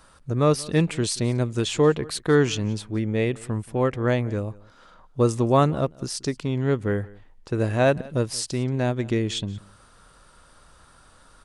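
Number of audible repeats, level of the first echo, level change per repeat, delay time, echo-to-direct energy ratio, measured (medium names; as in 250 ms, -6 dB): 1, -22.5 dB, no regular repeats, 179 ms, -22.5 dB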